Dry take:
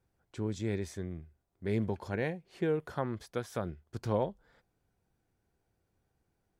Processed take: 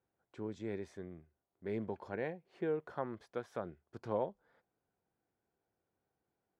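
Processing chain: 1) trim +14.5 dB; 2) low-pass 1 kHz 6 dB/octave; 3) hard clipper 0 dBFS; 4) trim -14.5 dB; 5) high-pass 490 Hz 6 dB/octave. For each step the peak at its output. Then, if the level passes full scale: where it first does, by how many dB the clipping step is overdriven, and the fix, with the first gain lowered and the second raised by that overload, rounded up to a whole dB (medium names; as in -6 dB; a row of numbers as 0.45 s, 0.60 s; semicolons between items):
-3.0 dBFS, -4.0 dBFS, -4.0 dBFS, -18.5 dBFS, -22.0 dBFS; nothing clips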